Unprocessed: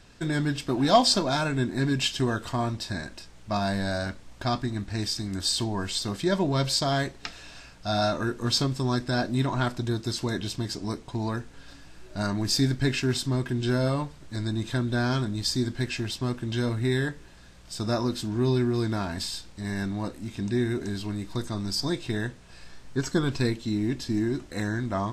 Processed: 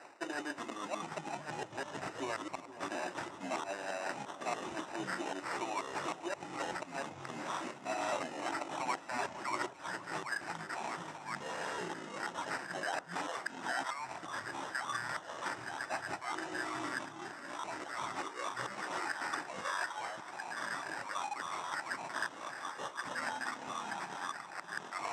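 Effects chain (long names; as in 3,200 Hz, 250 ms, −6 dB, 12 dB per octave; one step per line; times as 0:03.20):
harmonic and percussive parts rebalanced harmonic −13 dB
flat-topped bell 860 Hz +9.5 dB
reversed playback
downward compressor 6 to 1, threshold −42 dBFS, peak gain reduction 30 dB
reversed playback
flanger 0.33 Hz, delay 8.1 ms, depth 5.4 ms, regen +62%
high-pass filter sweep 340 Hz → 1,600 Hz, 0:07.92–0:09.85
gate with flip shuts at −34 dBFS, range −24 dB
sample-rate reduction 3,300 Hz, jitter 0%
delay with pitch and tempo change per echo 295 ms, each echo −6 semitones, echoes 3
loudspeaker in its box 210–8,100 Hz, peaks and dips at 220 Hz −9 dB, 460 Hz −8 dB, 870 Hz +4 dB, 4,400 Hz −8 dB
on a send: delay that swaps between a low-pass and a high-pass 472 ms, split 1,200 Hz, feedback 71%, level −14 dB
on the sum: level +9 dB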